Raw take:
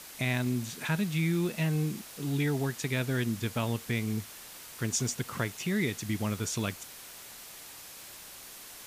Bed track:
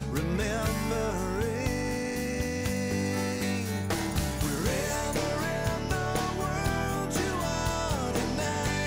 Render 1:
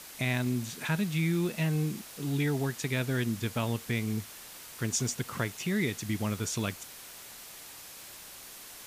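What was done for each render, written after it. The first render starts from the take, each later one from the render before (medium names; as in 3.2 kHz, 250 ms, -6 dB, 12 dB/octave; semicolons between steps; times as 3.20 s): no audible change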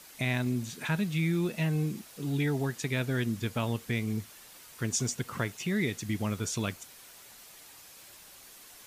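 noise reduction 6 dB, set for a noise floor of -48 dBFS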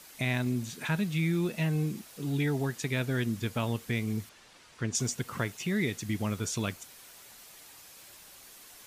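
4.29–4.95 s: distance through air 84 m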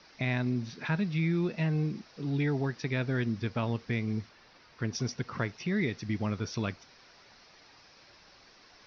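steep low-pass 5.7 kHz 96 dB/octave; peaking EQ 3.2 kHz -6 dB 0.57 oct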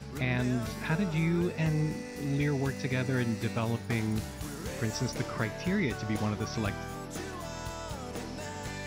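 add bed track -9.5 dB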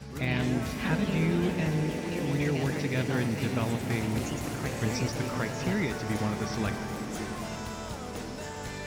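ever faster or slower copies 98 ms, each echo +3 st, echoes 3, each echo -6 dB; echo with a slow build-up 100 ms, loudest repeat 5, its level -16.5 dB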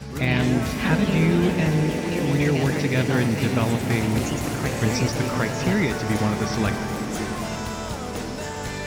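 trim +7.5 dB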